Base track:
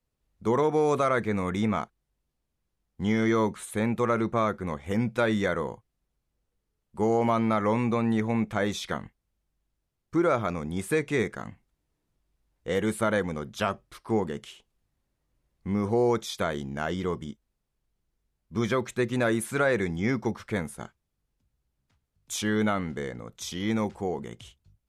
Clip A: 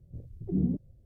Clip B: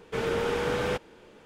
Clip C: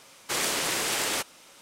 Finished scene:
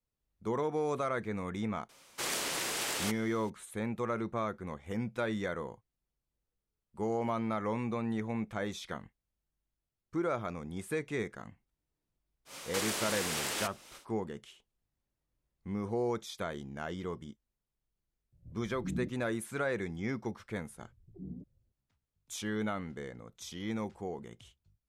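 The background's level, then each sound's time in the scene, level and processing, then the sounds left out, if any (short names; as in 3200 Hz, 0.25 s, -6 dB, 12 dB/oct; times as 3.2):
base track -9 dB
1.89 add C -7 dB
12.45 add C -7.5 dB, fades 0.10 s + three-band squash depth 70%
18.32 add A -9.5 dB + bell 420 Hz -13.5 dB 0.22 oct
20.67 add A -17 dB
not used: B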